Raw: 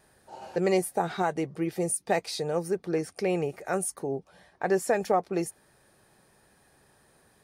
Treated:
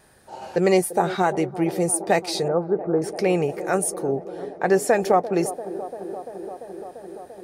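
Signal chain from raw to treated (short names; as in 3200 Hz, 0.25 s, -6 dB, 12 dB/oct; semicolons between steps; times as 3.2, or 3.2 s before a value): 2.48–3.02 Chebyshev low-pass 1400 Hz, order 4; band-limited delay 0.343 s, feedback 81%, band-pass 450 Hz, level -13 dB; gain +6.5 dB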